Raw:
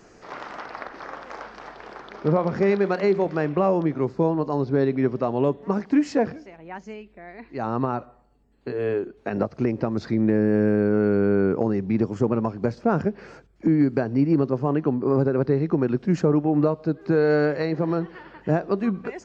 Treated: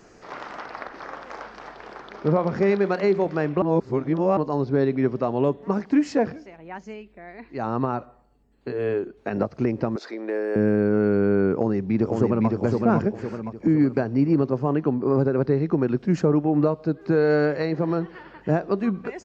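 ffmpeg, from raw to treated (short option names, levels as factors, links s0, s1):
-filter_complex "[0:a]asettb=1/sr,asplit=3[s0][s1][s2];[s0]atrim=end=9.964[s3];[s1]atrim=start=9.96:end=10.56,asetpts=PTS-STARTPTS,afade=t=in:d=0.004:c=qsin,afade=t=out:st=0.596:d=0.004:c=qsin,highpass=f=400:w=0.5412,highpass=f=400:w=1.3066[s4];[s2]atrim=start=10.556[s5];[s3][s4]acrossfade=d=0.004:c1=hsin:c2=qsin[s6];[s6][s5]acrossfade=d=0.004:c1=qsin:c2=hsin,asplit=2[s7][s8];[s8]afade=t=in:st=11.53:d=0.01,afade=t=out:st=12.5:d=0.01,aecho=0:1:510|1020|1530|2040|2550|3060:0.707946|0.318576|0.143359|0.0645116|0.0290302|0.0130636[s9];[s7][s9]amix=inputs=2:normalize=0,asplit=3[s10][s11][s12];[s10]atrim=end=3.622[s13];[s11]atrim=start=3.618:end=4.372,asetpts=PTS-STARTPTS,areverse[s14];[s12]atrim=start=4.368[s15];[s13][s14]acrossfade=d=0.004:c1=hsin:c2=hsin[s16];[s16][s15]acrossfade=d=0.004:c1=hsin:c2=hsin"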